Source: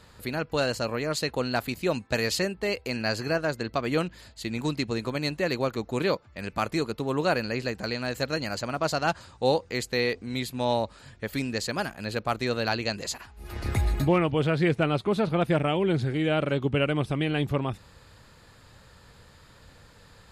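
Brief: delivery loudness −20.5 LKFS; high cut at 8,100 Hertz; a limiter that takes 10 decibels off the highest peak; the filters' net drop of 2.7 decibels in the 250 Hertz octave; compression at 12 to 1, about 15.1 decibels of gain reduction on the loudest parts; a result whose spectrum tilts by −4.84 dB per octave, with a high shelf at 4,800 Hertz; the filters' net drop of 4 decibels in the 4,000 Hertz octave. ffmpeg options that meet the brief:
ffmpeg -i in.wav -af "lowpass=8100,equalizer=frequency=250:width_type=o:gain=-4,equalizer=frequency=4000:width_type=o:gain=-8.5,highshelf=frequency=4800:gain=8.5,acompressor=threshold=-36dB:ratio=12,volume=24dB,alimiter=limit=-9.5dB:level=0:latency=1" out.wav

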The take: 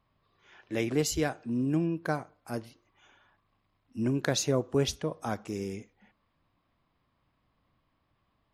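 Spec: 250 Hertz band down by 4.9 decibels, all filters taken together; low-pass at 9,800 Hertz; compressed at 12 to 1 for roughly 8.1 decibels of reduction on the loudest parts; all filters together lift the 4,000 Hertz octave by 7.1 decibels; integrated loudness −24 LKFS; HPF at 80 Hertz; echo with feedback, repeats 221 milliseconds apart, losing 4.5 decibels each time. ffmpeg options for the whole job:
ffmpeg -i in.wav -af "highpass=80,lowpass=9800,equalizer=frequency=250:width_type=o:gain=-6.5,equalizer=frequency=4000:width_type=o:gain=8.5,acompressor=threshold=-30dB:ratio=12,aecho=1:1:221|442|663|884|1105|1326|1547|1768|1989:0.596|0.357|0.214|0.129|0.0772|0.0463|0.0278|0.0167|0.01,volume=11.5dB" out.wav

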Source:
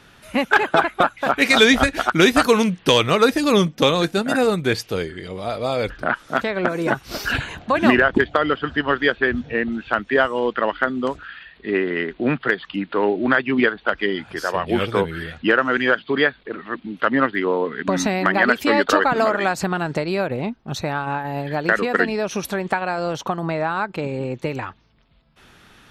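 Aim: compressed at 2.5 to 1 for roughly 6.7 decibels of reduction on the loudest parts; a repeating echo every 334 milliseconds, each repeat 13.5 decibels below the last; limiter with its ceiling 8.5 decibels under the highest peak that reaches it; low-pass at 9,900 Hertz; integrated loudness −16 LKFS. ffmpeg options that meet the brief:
ffmpeg -i in.wav -af "lowpass=9900,acompressor=threshold=-20dB:ratio=2.5,alimiter=limit=-15dB:level=0:latency=1,aecho=1:1:334|668:0.211|0.0444,volume=10.5dB" out.wav

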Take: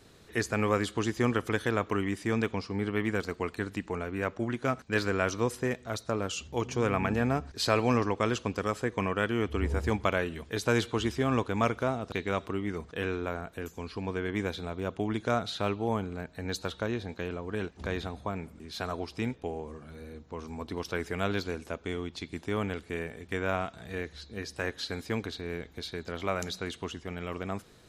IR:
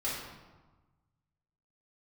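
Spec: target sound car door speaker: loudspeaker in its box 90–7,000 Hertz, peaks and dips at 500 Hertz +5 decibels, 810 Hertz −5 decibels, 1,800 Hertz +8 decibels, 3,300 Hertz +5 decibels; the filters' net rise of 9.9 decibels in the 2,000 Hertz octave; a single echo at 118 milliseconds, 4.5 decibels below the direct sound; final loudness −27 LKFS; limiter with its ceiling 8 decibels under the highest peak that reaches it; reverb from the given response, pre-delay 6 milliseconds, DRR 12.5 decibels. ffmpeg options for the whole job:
-filter_complex "[0:a]equalizer=frequency=2000:width_type=o:gain=6.5,alimiter=limit=-14.5dB:level=0:latency=1,aecho=1:1:118:0.596,asplit=2[link_01][link_02];[1:a]atrim=start_sample=2205,adelay=6[link_03];[link_02][link_03]afir=irnorm=-1:irlink=0,volume=-18dB[link_04];[link_01][link_04]amix=inputs=2:normalize=0,highpass=90,equalizer=frequency=500:width_type=q:width=4:gain=5,equalizer=frequency=810:width_type=q:width=4:gain=-5,equalizer=frequency=1800:width_type=q:width=4:gain=8,equalizer=frequency=3300:width_type=q:width=4:gain=5,lowpass=frequency=7000:width=0.5412,lowpass=frequency=7000:width=1.3066,volume=1dB"

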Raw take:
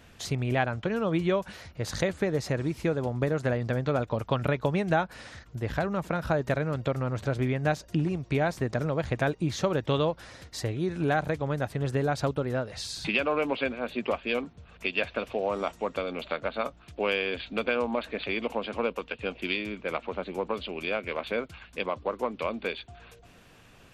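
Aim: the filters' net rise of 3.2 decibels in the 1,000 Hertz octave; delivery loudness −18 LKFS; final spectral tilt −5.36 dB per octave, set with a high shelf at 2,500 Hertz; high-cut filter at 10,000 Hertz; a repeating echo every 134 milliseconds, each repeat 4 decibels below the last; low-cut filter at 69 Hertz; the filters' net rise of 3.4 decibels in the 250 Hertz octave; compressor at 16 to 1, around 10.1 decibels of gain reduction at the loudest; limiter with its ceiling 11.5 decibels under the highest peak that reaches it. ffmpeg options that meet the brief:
ffmpeg -i in.wav -af "highpass=69,lowpass=10000,equalizer=frequency=250:width_type=o:gain=4.5,equalizer=frequency=1000:width_type=o:gain=5,highshelf=frequency=2500:gain=-6,acompressor=threshold=-29dB:ratio=16,alimiter=level_in=3.5dB:limit=-24dB:level=0:latency=1,volume=-3.5dB,aecho=1:1:134|268|402|536|670|804|938|1072|1206:0.631|0.398|0.25|0.158|0.0994|0.0626|0.0394|0.0249|0.0157,volume=19dB" out.wav

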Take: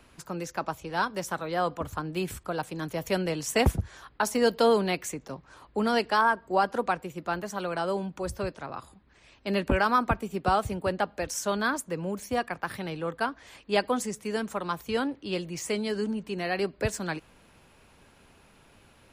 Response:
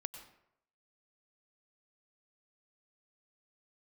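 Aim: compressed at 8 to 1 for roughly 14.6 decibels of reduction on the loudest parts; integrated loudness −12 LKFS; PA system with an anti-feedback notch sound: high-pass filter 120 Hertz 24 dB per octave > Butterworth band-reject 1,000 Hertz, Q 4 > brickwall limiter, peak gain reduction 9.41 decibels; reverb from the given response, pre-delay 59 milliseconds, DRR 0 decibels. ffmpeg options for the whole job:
-filter_complex "[0:a]acompressor=threshold=-33dB:ratio=8,asplit=2[link_01][link_02];[1:a]atrim=start_sample=2205,adelay=59[link_03];[link_02][link_03]afir=irnorm=-1:irlink=0,volume=2dB[link_04];[link_01][link_04]amix=inputs=2:normalize=0,highpass=frequency=120:width=0.5412,highpass=frequency=120:width=1.3066,asuperstop=centerf=1000:order=8:qfactor=4,volume=27dB,alimiter=limit=-3dB:level=0:latency=1"

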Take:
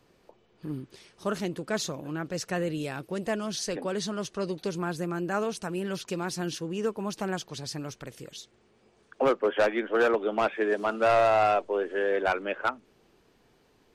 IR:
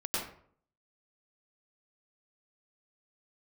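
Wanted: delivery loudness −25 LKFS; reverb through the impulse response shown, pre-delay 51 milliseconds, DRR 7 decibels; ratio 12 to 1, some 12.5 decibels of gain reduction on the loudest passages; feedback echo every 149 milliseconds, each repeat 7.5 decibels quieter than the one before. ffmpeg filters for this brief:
-filter_complex "[0:a]acompressor=threshold=-32dB:ratio=12,aecho=1:1:149|298|447|596|745:0.422|0.177|0.0744|0.0312|0.0131,asplit=2[link_01][link_02];[1:a]atrim=start_sample=2205,adelay=51[link_03];[link_02][link_03]afir=irnorm=-1:irlink=0,volume=-13dB[link_04];[link_01][link_04]amix=inputs=2:normalize=0,volume=10.5dB"

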